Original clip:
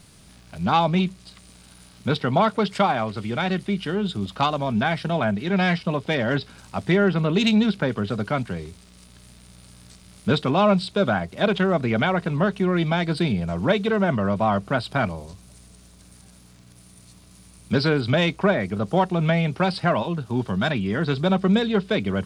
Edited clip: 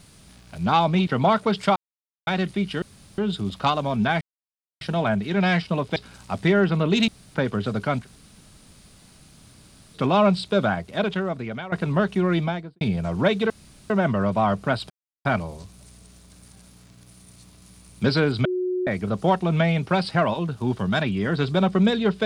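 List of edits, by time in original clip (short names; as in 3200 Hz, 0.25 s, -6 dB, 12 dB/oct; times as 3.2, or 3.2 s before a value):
1.07–2.19 cut
2.88–3.39 mute
3.94 insert room tone 0.36 s
4.97 insert silence 0.60 s
6.12–6.4 cut
7.52–7.79 room tone
8.48–10.41 room tone, crossfade 0.06 s
11.05–12.16 fade out, to -15.5 dB
12.76–13.25 studio fade out
13.94 insert room tone 0.40 s
14.94 insert silence 0.35 s
18.14–18.56 bleep 365 Hz -22 dBFS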